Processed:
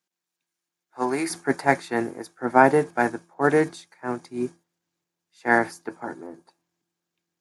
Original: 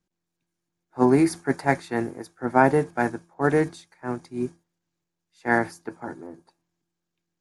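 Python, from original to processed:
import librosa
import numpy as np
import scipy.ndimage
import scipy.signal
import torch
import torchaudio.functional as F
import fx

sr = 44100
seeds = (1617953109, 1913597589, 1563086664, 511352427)

y = fx.highpass(x, sr, hz=fx.steps((0.0, 1200.0), (1.3, 260.0)), slope=6)
y = y * librosa.db_to_amplitude(3.0)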